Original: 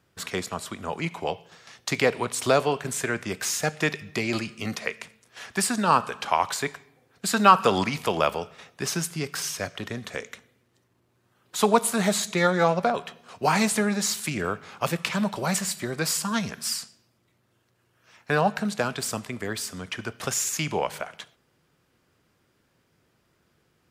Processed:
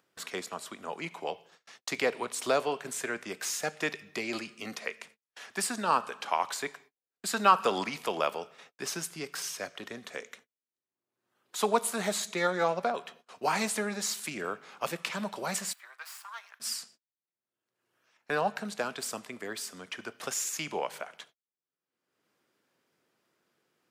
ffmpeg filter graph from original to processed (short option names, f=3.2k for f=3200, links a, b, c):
-filter_complex "[0:a]asettb=1/sr,asplit=3[a][b][c];[a]atrim=end=15.734[d];[b]atrim=start=15.73:end=16.6,asetpts=PTS-STARTPTS,afade=t=in:d=0.004:c=qsin,afade=t=out:st=0.866:d=0.004:c=qsin,aeval=exprs='if(lt(val(0),0),0.447*val(0),val(0))':c=same,highpass=f=990:w=0.5412,highpass=f=990:w=1.3066,equalizer=f=7k:w=0.44:g=-14[e];[c]atrim=start=16.596[f];[d][e]acrossfade=d=0.004:c1=hsin:c2=qsin[g];[g][f]acrossfade=d=0.004:c1=qsin:c2=hsin,agate=range=-39dB:threshold=-48dB:ratio=16:detection=peak,highpass=260,acompressor=mode=upward:threshold=-40dB:ratio=2.5,volume=-6dB"